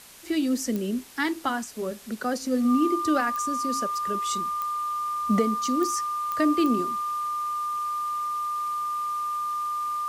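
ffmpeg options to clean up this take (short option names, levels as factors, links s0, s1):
-af "adeclick=t=4,bandreject=f=1200:w=30,afwtdn=0.0045"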